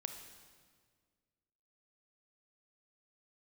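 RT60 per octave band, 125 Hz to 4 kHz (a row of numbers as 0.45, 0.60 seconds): 2.1, 2.1, 1.9, 1.6, 1.5, 1.5 seconds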